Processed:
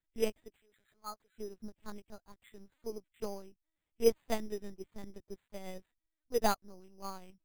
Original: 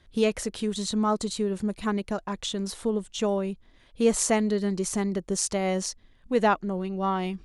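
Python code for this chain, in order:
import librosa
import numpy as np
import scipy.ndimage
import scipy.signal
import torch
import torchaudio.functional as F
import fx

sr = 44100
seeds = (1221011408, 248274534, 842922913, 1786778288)

y = fx.highpass(x, sr, hz=670.0, slope=12, at=(0.56, 1.35))
y = fx.lpc_vocoder(y, sr, seeds[0], excitation='pitch_kept', order=8)
y = np.repeat(y[::8], 8)[:len(y)]
y = fx.upward_expand(y, sr, threshold_db=-35.0, expansion=2.5)
y = F.gain(torch.from_numpy(y), -3.0).numpy()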